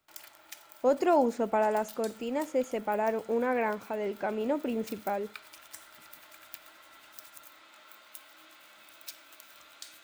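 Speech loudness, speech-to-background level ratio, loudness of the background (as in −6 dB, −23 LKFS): −30.0 LKFS, 20.0 dB, −50.0 LKFS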